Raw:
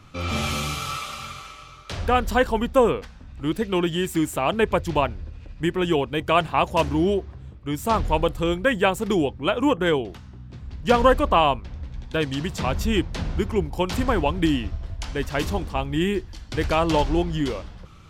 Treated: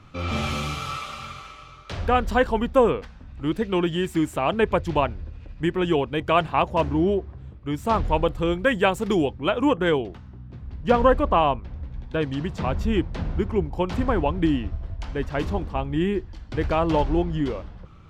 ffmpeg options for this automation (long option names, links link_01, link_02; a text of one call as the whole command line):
ffmpeg -i in.wav -af "asetnsamples=nb_out_samples=441:pad=0,asendcmd='6.62 lowpass f 1500;7.38 lowpass f 2800;8.59 lowpass f 6400;9.35 lowpass f 3800;10.08 lowpass f 1500',lowpass=frequency=3300:poles=1" out.wav